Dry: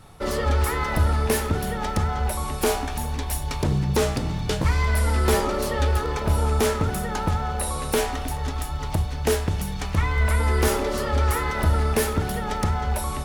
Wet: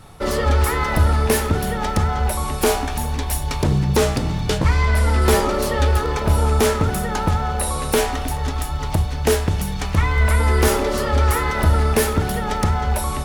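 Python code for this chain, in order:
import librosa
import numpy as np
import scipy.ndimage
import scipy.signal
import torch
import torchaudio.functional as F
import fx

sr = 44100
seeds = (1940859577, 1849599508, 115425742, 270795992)

y = fx.high_shelf(x, sr, hz=9800.0, db=-10.0, at=(4.58, 5.22))
y = y * 10.0 ** (4.5 / 20.0)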